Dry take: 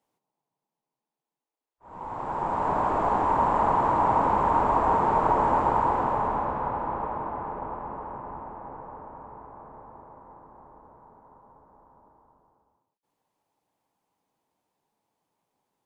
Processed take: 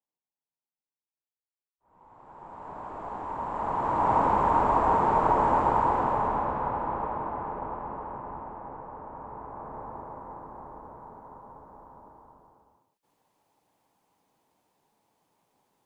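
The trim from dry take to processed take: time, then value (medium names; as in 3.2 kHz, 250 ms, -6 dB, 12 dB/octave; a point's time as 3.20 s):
2.22 s -19 dB
3.47 s -10.5 dB
4.14 s -0.5 dB
8.91 s -0.5 dB
9.84 s +7 dB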